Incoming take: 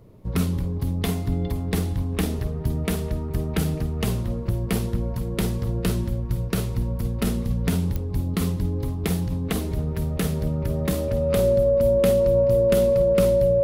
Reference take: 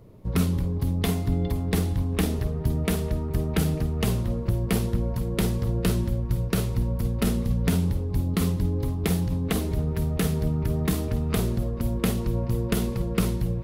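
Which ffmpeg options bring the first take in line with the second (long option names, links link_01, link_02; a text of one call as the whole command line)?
ffmpeg -i in.wav -af "adeclick=threshold=4,bandreject=frequency=560:width=30" out.wav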